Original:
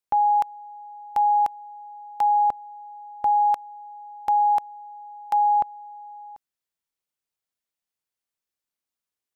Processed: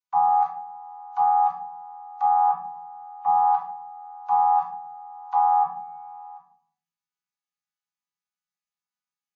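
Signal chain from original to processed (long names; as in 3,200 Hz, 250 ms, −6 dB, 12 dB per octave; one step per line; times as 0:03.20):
channel vocoder with a chord as carrier bare fifth, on E3
bass and treble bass −10 dB, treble +7 dB
0:05.74–0:06.31: transient designer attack −3 dB, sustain +4 dB
Chebyshev band-stop filter 220–810 Hz, order 5
rectangular room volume 820 cubic metres, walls furnished, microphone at 3.4 metres
WMA 128 kbit/s 16,000 Hz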